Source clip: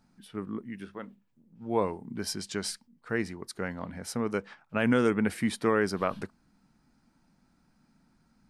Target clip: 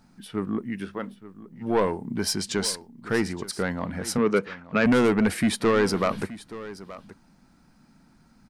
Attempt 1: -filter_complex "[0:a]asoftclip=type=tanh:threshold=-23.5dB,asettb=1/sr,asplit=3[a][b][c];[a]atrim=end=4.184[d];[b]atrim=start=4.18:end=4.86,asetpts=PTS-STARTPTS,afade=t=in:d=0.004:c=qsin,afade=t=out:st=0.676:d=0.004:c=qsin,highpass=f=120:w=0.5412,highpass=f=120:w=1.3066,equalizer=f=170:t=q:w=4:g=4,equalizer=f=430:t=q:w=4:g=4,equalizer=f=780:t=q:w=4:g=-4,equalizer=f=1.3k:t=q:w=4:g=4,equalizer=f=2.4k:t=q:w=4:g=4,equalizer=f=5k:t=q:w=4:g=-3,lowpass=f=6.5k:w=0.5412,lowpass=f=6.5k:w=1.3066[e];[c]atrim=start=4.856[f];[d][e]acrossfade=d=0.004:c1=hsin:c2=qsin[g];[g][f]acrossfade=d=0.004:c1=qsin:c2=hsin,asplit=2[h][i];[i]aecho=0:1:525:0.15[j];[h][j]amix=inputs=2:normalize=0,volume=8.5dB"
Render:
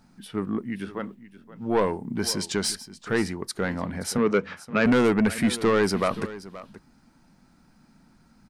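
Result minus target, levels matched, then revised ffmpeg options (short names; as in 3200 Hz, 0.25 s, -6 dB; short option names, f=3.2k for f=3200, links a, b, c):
echo 0.35 s early
-filter_complex "[0:a]asoftclip=type=tanh:threshold=-23.5dB,asettb=1/sr,asplit=3[a][b][c];[a]atrim=end=4.184[d];[b]atrim=start=4.18:end=4.86,asetpts=PTS-STARTPTS,afade=t=in:d=0.004:c=qsin,afade=t=out:st=0.676:d=0.004:c=qsin,highpass=f=120:w=0.5412,highpass=f=120:w=1.3066,equalizer=f=170:t=q:w=4:g=4,equalizer=f=430:t=q:w=4:g=4,equalizer=f=780:t=q:w=4:g=-4,equalizer=f=1.3k:t=q:w=4:g=4,equalizer=f=2.4k:t=q:w=4:g=4,equalizer=f=5k:t=q:w=4:g=-3,lowpass=f=6.5k:w=0.5412,lowpass=f=6.5k:w=1.3066[e];[c]atrim=start=4.856[f];[d][e]acrossfade=d=0.004:c1=hsin:c2=qsin[g];[g][f]acrossfade=d=0.004:c1=qsin:c2=hsin,asplit=2[h][i];[i]aecho=0:1:875:0.15[j];[h][j]amix=inputs=2:normalize=0,volume=8.5dB"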